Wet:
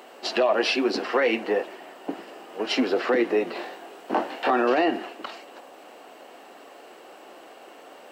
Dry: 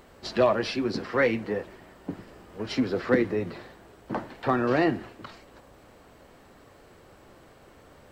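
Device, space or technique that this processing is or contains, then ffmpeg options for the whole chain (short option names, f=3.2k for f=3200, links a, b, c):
laptop speaker: -filter_complex "[0:a]highpass=f=280:w=0.5412,highpass=f=280:w=1.3066,equalizer=f=740:t=o:w=0.41:g=7,equalizer=f=2.8k:t=o:w=0.24:g=8.5,alimiter=limit=-18.5dB:level=0:latency=1:release=78,asettb=1/sr,asplit=3[a][b][c];[a]atrim=end=3.534[d];[b]atrim=start=3.53:end=4.51,asetpts=PTS-STARTPTS,afade=t=in:d=0.004:c=qsin,afade=t=out:st=0.976:d=0.004:c=qsin,asplit=2[e][f];[f]adelay=23,volume=-2dB[g];[e][g]amix=inputs=2:normalize=0,atrim=end_sample=43218[h];[c]atrim=start=4.506[i];[d][h]acrossfade=d=0.004:c1=hsin:c2=qsin[j];[j][i]acrossfade=d=0.004:c1=qsin:c2=hsin,volume=6dB"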